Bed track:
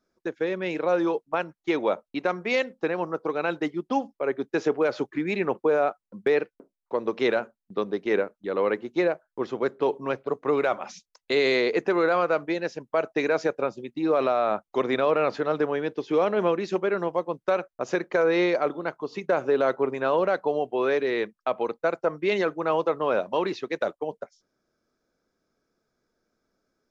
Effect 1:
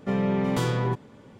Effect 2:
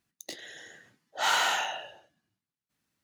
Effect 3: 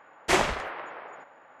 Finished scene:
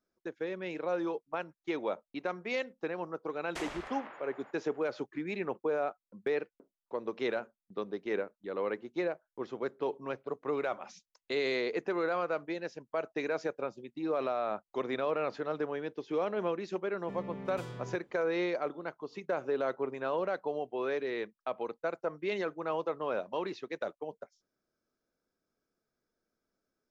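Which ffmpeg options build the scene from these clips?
-filter_complex "[0:a]volume=0.335[s0];[3:a]acompressor=threshold=0.0158:ratio=2.5:attack=30:release=93:knee=1:detection=peak,atrim=end=1.6,asetpts=PTS-STARTPTS,volume=0.335,afade=t=in:d=0.004:c=hsin,afade=t=out:st=1.596:d=0.004:c=hsin,adelay=3270[s1];[1:a]atrim=end=1.39,asetpts=PTS-STARTPTS,volume=0.126,afade=t=in:d=0.004:c=hsin,afade=t=out:st=1.386:d=0.004:c=hsin,adelay=17010[s2];[s0][s1][s2]amix=inputs=3:normalize=0"

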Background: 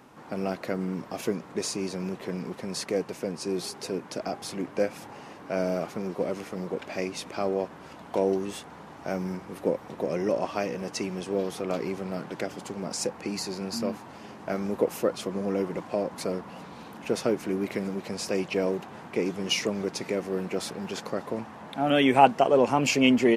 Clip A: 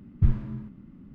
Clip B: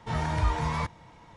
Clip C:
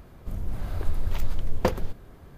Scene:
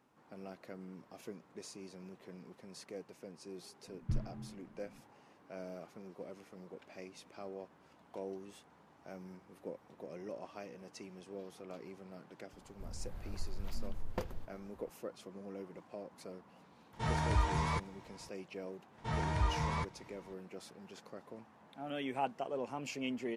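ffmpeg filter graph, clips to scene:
-filter_complex "[2:a]asplit=2[s0][s1];[0:a]volume=0.119[s2];[1:a]equalizer=f=62:t=o:w=0.73:g=-13[s3];[s0]highshelf=f=6600:g=6[s4];[s3]atrim=end=1.14,asetpts=PTS-STARTPTS,volume=0.282,afade=t=in:d=0.004:c=hsin,afade=t=out:st=1.136:d=0.004:c=hsin,adelay=3870[s5];[3:a]atrim=end=2.37,asetpts=PTS-STARTPTS,volume=0.178,afade=t=in:d=0.004:c=hsin,afade=t=out:st=2.366:d=0.004:c=hsin,adelay=12530[s6];[s4]atrim=end=1.36,asetpts=PTS-STARTPTS,volume=0.562,afade=t=in:d=0.004:c=hsin,afade=t=out:st=1.356:d=0.004:c=hsin,adelay=16930[s7];[s1]atrim=end=1.36,asetpts=PTS-STARTPTS,volume=0.473,afade=t=in:d=0.004:c=hsin,afade=t=out:st=1.356:d=0.004:c=hsin,adelay=18980[s8];[s2][s5][s6][s7][s8]amix=inputs=5:normalize=0"

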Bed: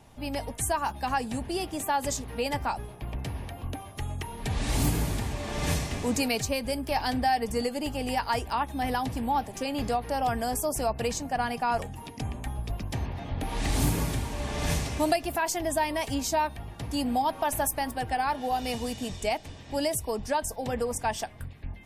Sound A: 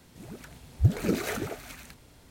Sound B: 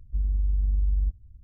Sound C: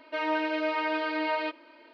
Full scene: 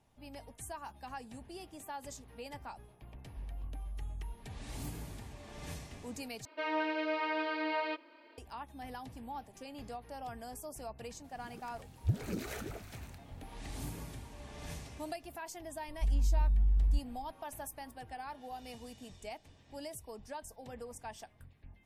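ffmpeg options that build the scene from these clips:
-filter_complex "[2:a]asplit=2[s0][s1];[0:a]volume=0.15[s2];[s0]aecho=1:1:6.3:0.65[s3];[1:a]acrossover=split=260|3000[s4][s5][s6];[s5]acompressor=threshold=0.0355:ratio=6:attack=3.2:release=140:knee=2.83:detection=peak[s7];[s4][s7][s6]amix=inputs=3:normalize=0[s8];[s1]equalizer=f=78:w=2:g=-13[s9];[s2]asplit=2[s10][s11];[s10]atrim=end=6.454[s12];[3:a]atrim=end=1.93,asetpts=PTS-STARTPTS,volume=0.531[s13];[s11]atrim=start=8.376[s14];[s3]atrim=end=1.43,asetpts=PTS-STARTPTS,volume=0.133,afade=t=in:d=0.004:c=hsin,afade=t=out:st=1.426:d=0.004:c=hsin,adelay=3230[s15];[s8]atrim=end=2.3,asetpts=PTS-STARTPTS,volume=0.335,afade=t=in:d=0.004:c=hsin,afade=t=out:st=2.296:d=0.004:c=hsin,adelay=11240[s16];[s9]atrim=end=1.43,asetpts=PTS-STARTPTS,volume=0.944,afade=t=in:d=0.004:c=hsin,afade=t=out:st=1.426:d=0.004:c=hsin,adelay=700308S[s17];[s12][s13]acrossfade=d=0.004:c1=hsin:c2=hsin[s18];[s18][s14]acrossfade=d=0.004:c1=hsin:c2=hsin[s19];[s19][s15][s16][s17]amix=inputs=4:normalize=0"

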